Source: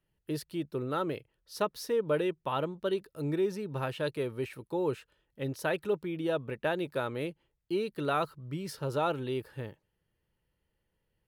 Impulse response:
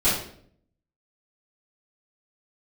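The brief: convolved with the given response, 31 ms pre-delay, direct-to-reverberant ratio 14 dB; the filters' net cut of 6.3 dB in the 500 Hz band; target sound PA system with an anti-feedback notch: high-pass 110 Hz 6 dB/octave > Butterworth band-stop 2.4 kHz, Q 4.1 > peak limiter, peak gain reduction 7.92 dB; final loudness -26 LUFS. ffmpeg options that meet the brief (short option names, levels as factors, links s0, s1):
-filter_complex "[0:a]equalizer=f=500:t=o:g=-8,asplit=2[s0][s1];[1:a]atrim=start_sample=2205,adelay=31[s2];[s1][s2]afir=irnorm=-1:irlink=0,volume=0.0355[s3];[s0][s3]amix=inputs=2:normalize=0,highpass=f=110:p=1,asuperstop=centerf=2400:order=8:qfactor=4.1,volume=4.47,alimiter=limit=0.2:level=0:latency=1"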